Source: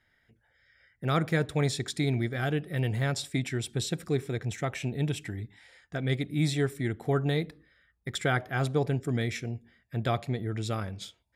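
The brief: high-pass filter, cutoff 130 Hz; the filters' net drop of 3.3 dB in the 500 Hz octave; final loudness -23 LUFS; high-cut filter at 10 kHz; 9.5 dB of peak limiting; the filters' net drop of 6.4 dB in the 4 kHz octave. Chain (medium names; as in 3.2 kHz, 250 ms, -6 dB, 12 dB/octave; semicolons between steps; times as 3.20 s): high-pass 130 Hz; low-pass 10 kHz; peaking EQ 500 Hz -4 dB; peaking EQ 4 kHz -7.5 dB; trim +13 dB; peak limiter -10 dBFS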